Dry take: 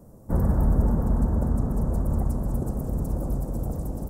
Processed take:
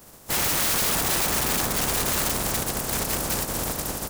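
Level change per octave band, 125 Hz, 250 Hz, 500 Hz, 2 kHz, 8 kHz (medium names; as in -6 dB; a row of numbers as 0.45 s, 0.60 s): -9.5 dB, -5.0 dB, +2.5 dB, no reading, +26.5 dB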